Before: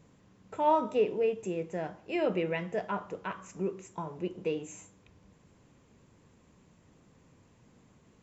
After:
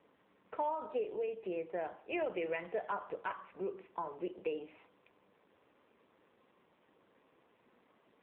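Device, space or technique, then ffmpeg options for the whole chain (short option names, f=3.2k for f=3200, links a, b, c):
voicemail: -af "highpass=430,lowpass=3.3k,acompressor=threshold=-33dB:ratio=12,volume=1.5dB" -ar 8000 -c:a libopencore_amrnb -b:a 7400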